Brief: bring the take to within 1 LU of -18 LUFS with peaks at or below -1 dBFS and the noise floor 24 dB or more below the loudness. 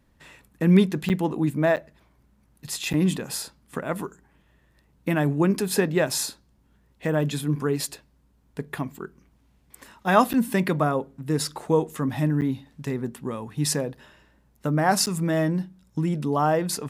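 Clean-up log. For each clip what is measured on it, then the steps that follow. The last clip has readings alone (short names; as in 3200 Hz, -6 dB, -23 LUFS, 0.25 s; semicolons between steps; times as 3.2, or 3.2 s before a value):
dropouts 6; longest dropout 8.7 ms; loudness -25.0 LUFS; peak -3.5 dBFS; loudness target -18.0 LUFS
-> interpolate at 1.09/1.76/2.93/10.33/12.41/15.06, 8.7 ms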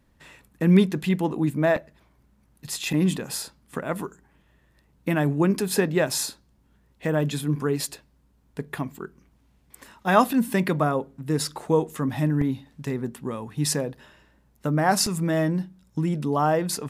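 dropouts 0; loudness -25.0 LUFS; peak -3.5 dBFS; loudness target -18.0 LUFS
-> gain +7 dB; limiter -1 dBFS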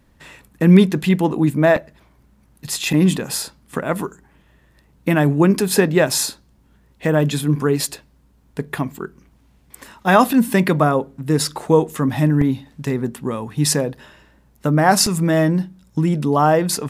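loudness -18.0 LUFS; peak -1.0 dBFS; noise floor -56 dBFS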